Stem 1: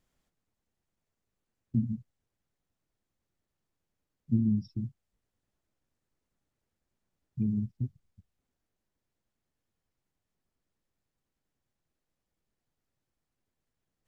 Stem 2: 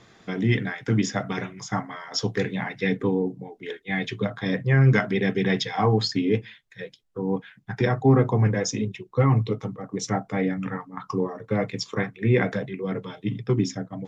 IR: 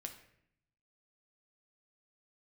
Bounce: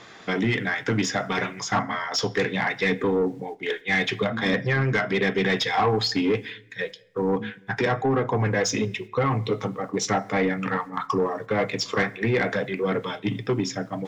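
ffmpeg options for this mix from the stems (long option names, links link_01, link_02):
-filter_complex "[0:a]acompressor=mode=upward:threshold=-38dB:ratio=2.5,volume=-5dB[link_01];[1:a]alimiter=limit=-15.5dB:level=0:latency=1:release=301,volume=0.5dB,asplit=3[link_02][link_03][link_04];[link_03]volume=-6dB[link_05];[link_04]apad=whole_len=620621[link_06];[link_01][link_06]sidechaingate=range=-33dB:threshold=-39dB:ratio=16:detection=peak[link_07];[2:a]atrim=start_sample=2205[link_08];[link_05][link_08]afir=irnorm=-1:irlink=0[link_09];[link_07][link_02][link_09]amix=inputs=3:normalize=0,highshelf=frequency=2400:gain=11.5,asplit=2[link_10][link_11];[link_11]highpass=frequency=720:poles=1,volume=14dB,asoftclip=type=tanh:threshold=-3dB[link_12];[link_10][link_12]amix=inputs=2:normalize=0,lowpass=frequency=1100:poles=1,volume=-6dB,asoftclip=type=tanh:threshold=-14.5dB"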